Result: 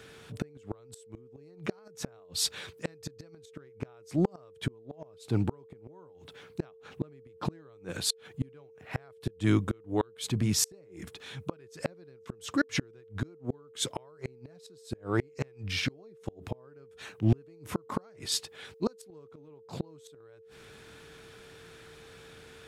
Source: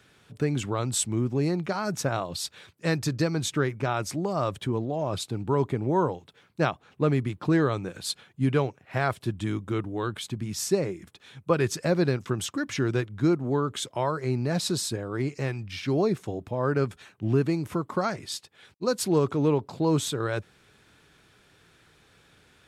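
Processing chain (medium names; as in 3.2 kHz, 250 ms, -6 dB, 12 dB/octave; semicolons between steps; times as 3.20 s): inverted gate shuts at -19 dBFS, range -38 dB; whistle 450 Hz -59 dBFS; transient shaper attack -5 dB, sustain 0 dB; trim +6.5 dB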